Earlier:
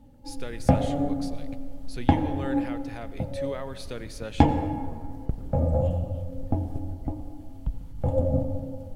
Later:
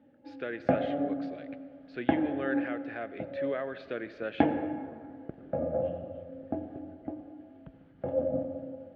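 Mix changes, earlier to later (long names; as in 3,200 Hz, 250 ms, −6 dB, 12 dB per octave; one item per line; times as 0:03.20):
background −4.0 dB
master: add loudspeaker in its box 240–2,900 Hz, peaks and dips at 340 Hz +5 dB, 640 Hz +6 dB, 930 Hz −10 dB, 1,600 Hz +8 dB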